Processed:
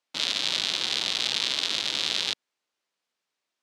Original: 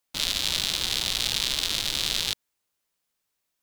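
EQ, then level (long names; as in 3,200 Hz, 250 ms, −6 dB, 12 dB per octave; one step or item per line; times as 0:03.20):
band-pass filter 230–5,400 Hz
+1.0 dB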